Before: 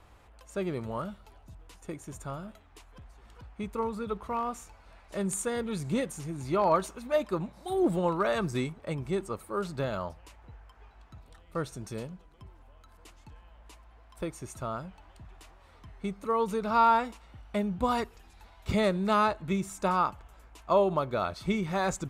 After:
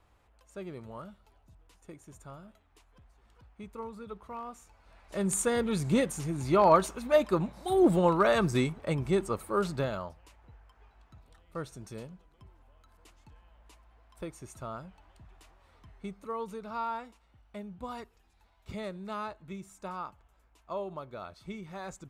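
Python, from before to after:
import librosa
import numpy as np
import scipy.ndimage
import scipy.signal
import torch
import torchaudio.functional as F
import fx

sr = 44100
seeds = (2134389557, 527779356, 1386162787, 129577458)

y = fx.gain(x, sr, db=fx.line((4.6, -9.0), (5.39, 3.5), (9.69, 3.5), (10.09, -5.0), (15.91, -5.0), (16.86, -12.5)))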